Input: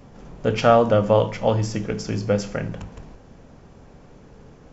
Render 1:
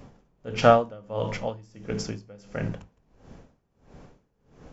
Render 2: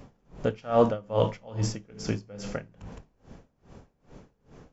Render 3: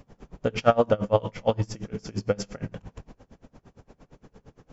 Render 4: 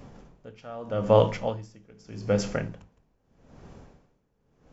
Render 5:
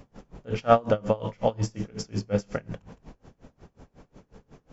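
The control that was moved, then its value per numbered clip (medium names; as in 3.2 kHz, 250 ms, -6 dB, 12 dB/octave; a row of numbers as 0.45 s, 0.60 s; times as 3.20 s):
logarithmic tremolo, rate: 1.5 Hz, 2.4 Hz, 8.7 Hz, 0.81 Hz, 5.5 Hz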